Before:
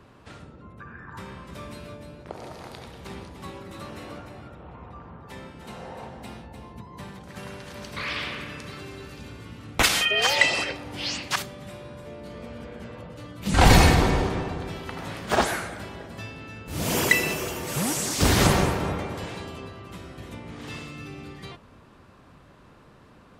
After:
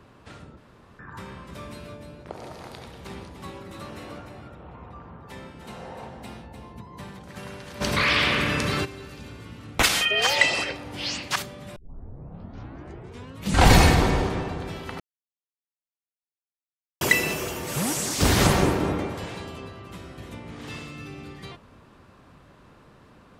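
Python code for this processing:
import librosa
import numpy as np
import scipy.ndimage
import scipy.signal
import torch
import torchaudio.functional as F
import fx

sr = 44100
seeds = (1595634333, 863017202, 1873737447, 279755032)

y = fx.env_flatten(x, sr, amount_pct=50, at=(7.8, 8.84), fade=0.02)
y = fx.peak_eq(y, sr, hz=310.0, db=7.5, octaves=0.86, at=(18.62, 19.1))
y = fx.edit(y, sr, fx.room_tone_fill(start_s=0.57, length_s=0.42),
    fx.tape_start(start_s=11.76, length_s=1.73),
    fx.silence(start_s=15.0, length_s=2.01), tone=tone)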